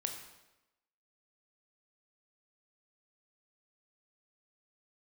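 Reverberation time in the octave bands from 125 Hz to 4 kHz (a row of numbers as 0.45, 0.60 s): 0.90, 1.0, 1.0, 0.95, 0.90, 0.85 s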